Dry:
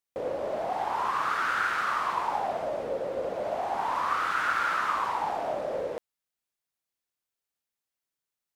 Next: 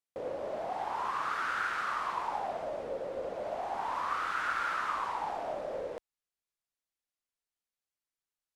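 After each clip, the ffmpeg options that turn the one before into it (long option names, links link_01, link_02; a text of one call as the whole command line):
ffmpeg -i in.wav -af "lowpass=12000,asubboost=boost=2:cutoff=68,volume=-5.5dB" out.wav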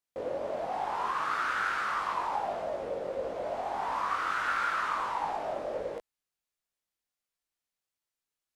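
ffmpeg -i in.wav -af "flanger=delay=19:depth=2.7:speed=1.5,volume=5.5dB" out.wav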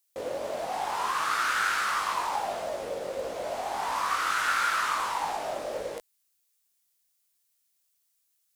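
ffmpeg -i in.wav -af "crystalizer=i=5:c=0,acrusher=bits=8:mode=log:mix=0:aa=0.000001" out.wav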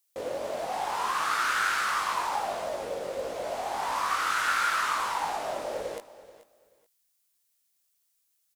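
ffmpeg -i in.wav -af "aecho=1:1:432|864:0.141|0.0297" out.wav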